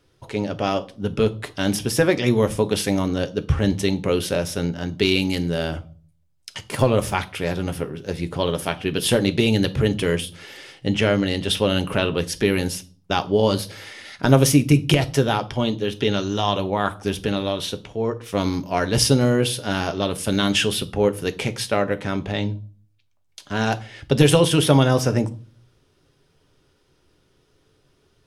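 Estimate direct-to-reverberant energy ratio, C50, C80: 9.0 dB, 19.5 dB, 24.5 dB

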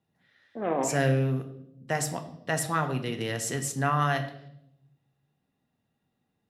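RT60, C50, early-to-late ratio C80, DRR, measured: 0.80 s, 11.5 dB, 13.5 dB, 5.5 dB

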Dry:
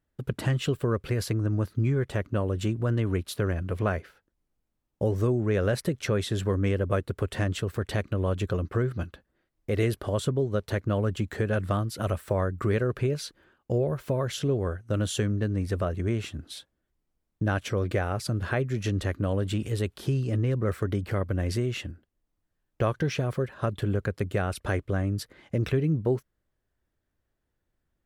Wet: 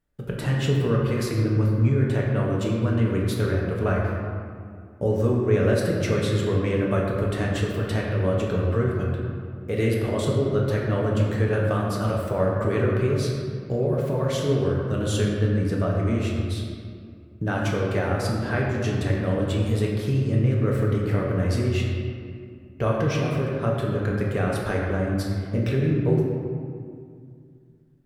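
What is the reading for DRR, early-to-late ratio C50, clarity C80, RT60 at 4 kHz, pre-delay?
−3.5 dB, 0.5 dB, 2.0 dB, 1.2 s, 4 ms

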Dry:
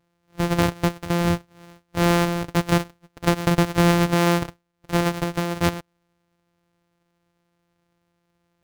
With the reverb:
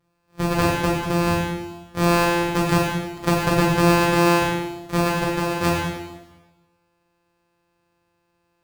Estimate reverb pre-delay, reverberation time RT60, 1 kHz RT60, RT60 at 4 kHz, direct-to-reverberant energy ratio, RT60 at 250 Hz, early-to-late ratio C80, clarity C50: 4 ms, 1.2 s, 1.2 s, 1.1 s, −4.5 dB, 1.2 s, 3.5 dB, 1.5 dB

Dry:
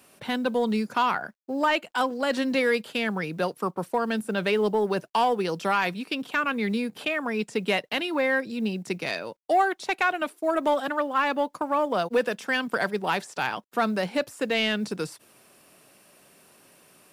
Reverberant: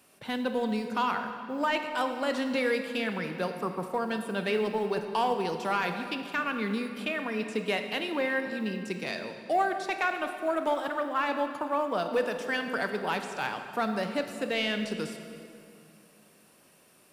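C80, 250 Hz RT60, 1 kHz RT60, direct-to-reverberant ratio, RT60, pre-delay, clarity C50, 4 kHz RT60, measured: 8.0 dB, 2.9 s, 2.3 s, 6.0 dB, 2.5 s, 23 ms, 7.0 dB, 1.9 s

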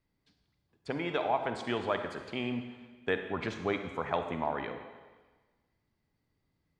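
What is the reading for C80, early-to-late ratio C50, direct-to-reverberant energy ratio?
9.0 dB, 7.0 dB, 6.5 dB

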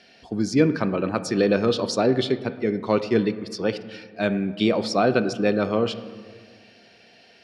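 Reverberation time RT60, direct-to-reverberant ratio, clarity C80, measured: 1.7 s, 11.0 dB, 14.5 dB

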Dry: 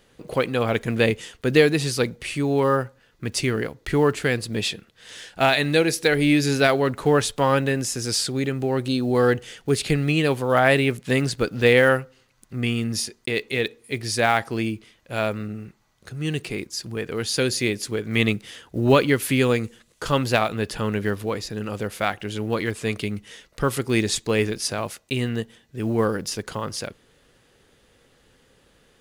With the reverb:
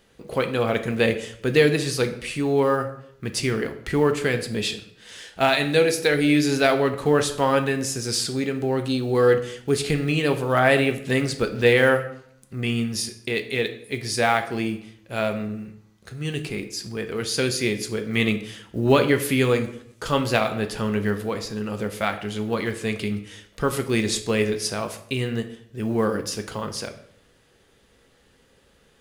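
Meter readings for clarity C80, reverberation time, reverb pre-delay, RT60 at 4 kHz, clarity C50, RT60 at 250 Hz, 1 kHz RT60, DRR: 14.5 dB, 0.70 s, 3 ms, 0.50 s, 11.5 dB, 0.75 s, 0.65 s, 6.5 dB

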